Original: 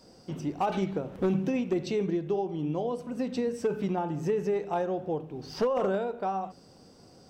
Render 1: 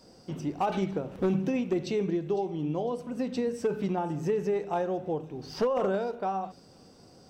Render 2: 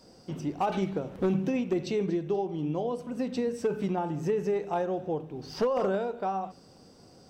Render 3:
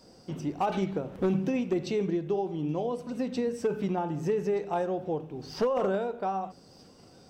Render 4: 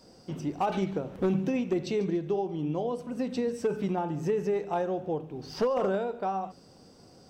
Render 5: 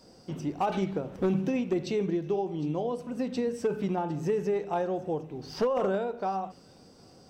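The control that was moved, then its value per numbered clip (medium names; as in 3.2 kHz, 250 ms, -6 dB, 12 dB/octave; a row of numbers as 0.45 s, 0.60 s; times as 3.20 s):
feedback echo behind a high-pass, time: 504 ms, 239 ms, 1224 ms, 143 ms, 757 ms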